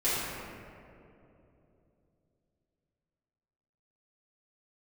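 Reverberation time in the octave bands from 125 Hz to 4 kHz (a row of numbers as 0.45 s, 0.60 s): 4.1 s, 3.7 s, 3.4 s, 2.4 s, 1.9 s, 1.2 s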